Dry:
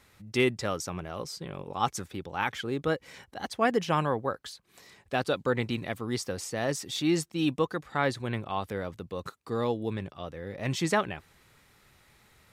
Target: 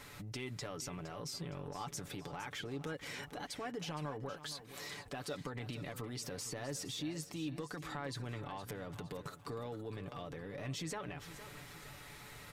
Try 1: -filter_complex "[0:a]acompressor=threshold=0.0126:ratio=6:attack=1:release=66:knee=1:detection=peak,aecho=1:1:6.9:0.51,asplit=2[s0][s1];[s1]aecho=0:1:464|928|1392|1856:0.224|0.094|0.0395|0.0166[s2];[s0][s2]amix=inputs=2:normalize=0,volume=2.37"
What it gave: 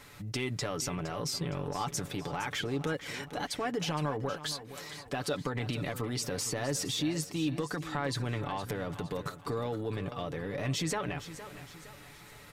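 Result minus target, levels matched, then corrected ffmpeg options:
compression: peak gain reduction -9 dB
-filter_complex "[0:a]acompressor=threshold=0.00355:ratio=6:attack=1:release=66:knee=1:detection=peak,aecho=1:1:6.9:0.51,asplit=2[s0][s1];[s1]aecho=0:1:464|928|1392|1856:0.224|0.094|0.0395|0.0166[s2];[s0][s2]amix=inputs=2:normalize=0,volume=2.37"

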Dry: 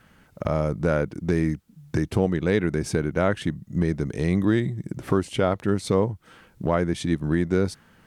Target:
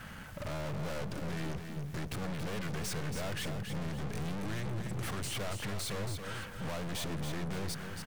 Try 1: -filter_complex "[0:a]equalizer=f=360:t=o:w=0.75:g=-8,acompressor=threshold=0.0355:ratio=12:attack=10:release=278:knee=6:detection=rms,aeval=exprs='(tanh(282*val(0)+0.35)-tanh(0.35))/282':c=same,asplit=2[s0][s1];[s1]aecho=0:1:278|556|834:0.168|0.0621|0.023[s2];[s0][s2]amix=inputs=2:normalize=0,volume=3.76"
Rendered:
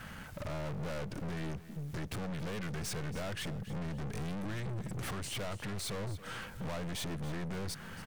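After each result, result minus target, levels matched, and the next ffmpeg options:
compression: peak gain reduction +7.5 dB; echo-to-direct -8.5 dB
-filter_complex "[0:a]equalizer=f=360:t=o:w=0.75:g=-8,acompressor=threshold=0.0944:ratio=12:attack=10:release=278:knee=6:detection=rms,aeval=exprs='(tanh(282*val(0)+0.35)-tanh(0.35))/282':c=same,asplit=2[s0][s1];[s1]aecho=0:1:278|556|834:0.168|0.0621|0.023[s2];[s0][s2]amix=inputs=2:normalize=0,volume=3.76"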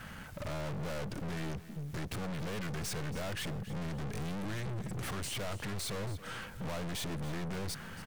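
echo-to-direct -8.5 dB
-filter_complex "[0:a]equalizer=f=360:t=o:w=0.75:g=-8,acompressor=threshold=0.0944:ratio=12:attack=10:release=278:knee=6:detection=rms,aeval=exprs='(tanh(282*val(0)+0.35)-tanh(0.35))/282':c=same,asplit=2[s0][s1];[s1]aecho=0:1:278|556|834|1112:0.447|0.165|0.0612|0.0226[s2];[s0][s2]amix=inputs=2:normalize=0,volume=3.76"

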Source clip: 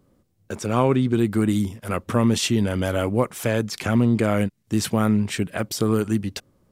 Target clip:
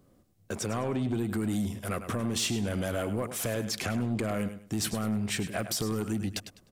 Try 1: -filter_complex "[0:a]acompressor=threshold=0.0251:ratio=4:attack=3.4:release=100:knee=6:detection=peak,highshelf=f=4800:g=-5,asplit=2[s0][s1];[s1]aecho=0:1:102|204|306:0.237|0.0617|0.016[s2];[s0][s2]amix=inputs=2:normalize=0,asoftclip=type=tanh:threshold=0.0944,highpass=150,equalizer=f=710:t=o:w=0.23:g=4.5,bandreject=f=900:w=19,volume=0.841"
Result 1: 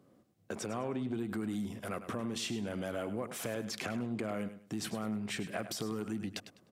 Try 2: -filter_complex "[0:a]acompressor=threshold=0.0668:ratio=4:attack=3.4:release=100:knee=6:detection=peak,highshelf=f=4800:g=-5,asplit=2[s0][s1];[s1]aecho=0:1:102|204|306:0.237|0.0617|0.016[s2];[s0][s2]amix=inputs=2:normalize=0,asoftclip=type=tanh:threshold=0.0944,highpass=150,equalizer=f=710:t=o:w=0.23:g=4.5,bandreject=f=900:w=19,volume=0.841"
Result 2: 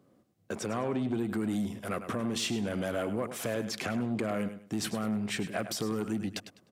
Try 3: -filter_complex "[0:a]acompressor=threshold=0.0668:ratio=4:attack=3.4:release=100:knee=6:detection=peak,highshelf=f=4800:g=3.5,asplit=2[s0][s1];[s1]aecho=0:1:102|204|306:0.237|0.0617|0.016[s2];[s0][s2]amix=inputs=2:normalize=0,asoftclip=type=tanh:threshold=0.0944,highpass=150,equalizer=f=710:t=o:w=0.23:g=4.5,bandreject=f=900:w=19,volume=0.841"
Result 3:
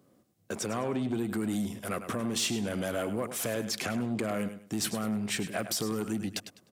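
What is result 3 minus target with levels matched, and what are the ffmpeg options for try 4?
125 Hz band -4.5 dB
-filter_complex "[0:a]acompressor=threshold=0.0668:ratio=4:attack=3.4:release=100:knee=6:detection=peak,highshelf=f=4800:g=3.5,asplit=2[s0][s1];[s1]aecho=0:1:102|204|306:0.237|0.0617|0.016[s2];[s0][s2]amix=inputs=2:normalize=0,asoftclip=type=tanh:threshold=0.0944,equalizer=f=710:t=o:w=0.23:g=4.5,bandreject=f=900:w=19,volume=0.841"

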